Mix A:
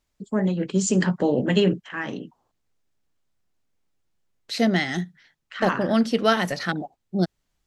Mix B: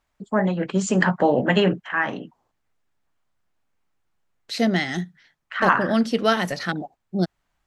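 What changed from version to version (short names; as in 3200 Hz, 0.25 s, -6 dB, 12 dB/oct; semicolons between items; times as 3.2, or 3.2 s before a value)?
first voice: add EQ curve 430 Hz 0 dB, 710 Hz +10 dB, 1600 Hz +9 dB, 5200 Hz -4 dB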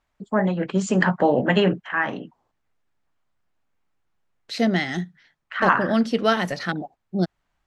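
master: add high shelf 7400 Hz -8 dB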